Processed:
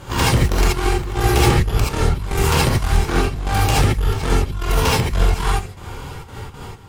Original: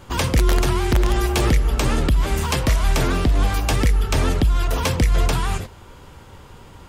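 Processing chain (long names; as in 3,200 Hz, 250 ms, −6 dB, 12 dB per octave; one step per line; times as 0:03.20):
in parallel at −2 dB: downward compressor, threshold −28 dBFS, peak gain reduction 14.5 dB
on the sum: asymmetric clip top −28.5 dBFS, bottom −10.5 dBFS
gate pattern "xxx.x.x.." 117 BPM −12 dB
reverb whose tail is shaped and stops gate 100 ms rising, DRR −5.5 dB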